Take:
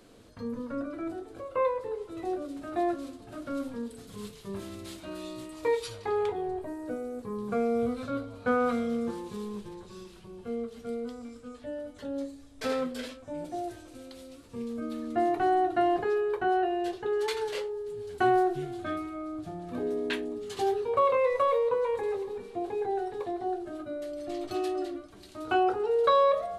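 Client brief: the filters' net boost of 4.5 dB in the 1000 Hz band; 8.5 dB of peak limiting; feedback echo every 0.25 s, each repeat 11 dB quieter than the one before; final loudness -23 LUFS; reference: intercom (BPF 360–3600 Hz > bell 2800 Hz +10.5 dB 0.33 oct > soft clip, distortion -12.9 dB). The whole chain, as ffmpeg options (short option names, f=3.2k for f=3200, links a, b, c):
-af "equalizer=f=1k:t=o:g=6.5,alimiter=limit=-17.5dB:level=0:latency=1,highpass=360,lowpass=3.6k,equalizer=f=2.8k:t=o:w=0.33:g=10.5,aecho=1:1:250|500|750:0.282|0.0789|0.0221,asoftclip=threshold=-24.5dB,volume=10.5dB"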